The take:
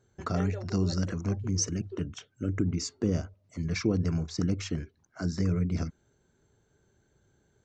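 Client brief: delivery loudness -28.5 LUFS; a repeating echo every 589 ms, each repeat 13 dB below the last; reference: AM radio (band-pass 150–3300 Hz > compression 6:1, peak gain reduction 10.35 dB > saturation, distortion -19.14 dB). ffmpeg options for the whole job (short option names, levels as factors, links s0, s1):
-af "highpass=150,lowpass=3300,aecho=1:1:589|1178|1767:0.224|0.0493|0.0108,acompressor=threshold=0.0251:ratio=6,asoftclip=threshold=0.0422,volume=3.76"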